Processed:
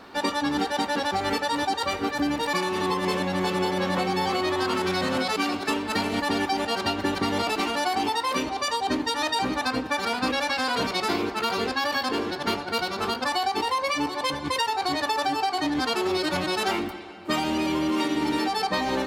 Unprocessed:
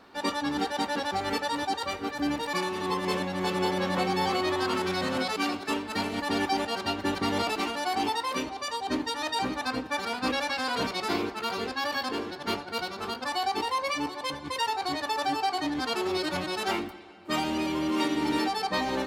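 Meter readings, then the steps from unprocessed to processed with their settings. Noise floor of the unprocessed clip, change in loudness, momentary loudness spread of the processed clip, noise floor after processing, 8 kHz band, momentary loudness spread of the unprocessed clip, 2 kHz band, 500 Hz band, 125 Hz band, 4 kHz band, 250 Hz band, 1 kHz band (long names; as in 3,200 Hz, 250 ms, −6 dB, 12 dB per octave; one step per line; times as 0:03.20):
−41 dBFS, +3.5 dB, 2 LU, −34 dBFS, +4.0 dB, 5 LU, +4.0 dB, +3.5 dB, +3.5 dB, +4.0 dB, +3.5 dB, +3.5 dB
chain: downward compressor, threshold −30 dBFS, peak gain reduction 7.5 dB
level +8 dB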